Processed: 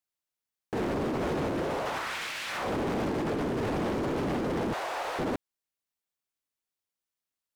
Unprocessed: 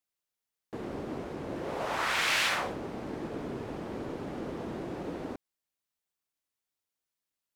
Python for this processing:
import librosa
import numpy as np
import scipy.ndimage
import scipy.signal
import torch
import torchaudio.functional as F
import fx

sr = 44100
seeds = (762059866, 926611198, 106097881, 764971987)

y = fx.highpass(x, sr, hz=690.0, slope=24, at=(4.73, 5.19))
y = fx.over_compress(y, sr, threshold_db=-39.0, ratio=-1.0)
y = fx.leveller(y, sr, passes=3)